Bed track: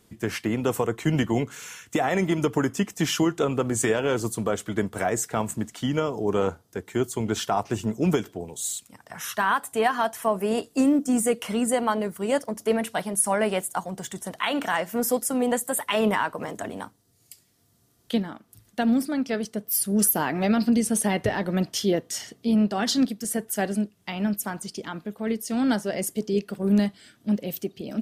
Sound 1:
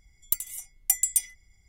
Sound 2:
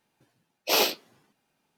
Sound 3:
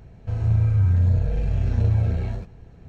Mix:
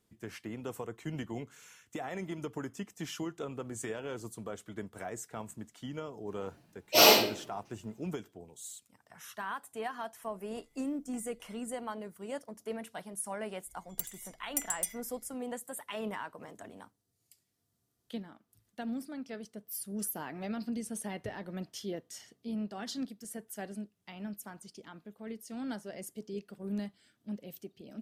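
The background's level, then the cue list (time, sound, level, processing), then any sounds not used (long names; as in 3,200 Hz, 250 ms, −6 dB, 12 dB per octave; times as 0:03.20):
bed track −15.5 dB
0:06.25: mix in 2 −7.5 dB + rectangular room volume 63 cubic metres, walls mixed, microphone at 2.6 metres
0:10.24: mix in 1 −12.5 dB + low-pass filter 1,300 Hz
0:13.67: mix in 1 −6.5 dB + high-shelf EQ 5,600 Hz −5 dB
not used: 3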